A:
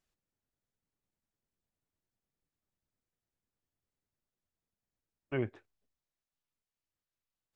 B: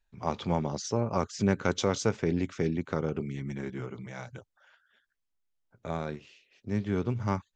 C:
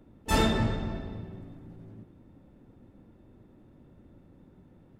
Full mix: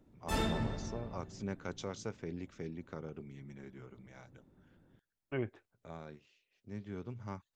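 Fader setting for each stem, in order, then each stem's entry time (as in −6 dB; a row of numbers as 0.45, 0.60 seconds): −3.0, −14.0, −9.0 decibels; 0.00, 0.00, 0.00 seconds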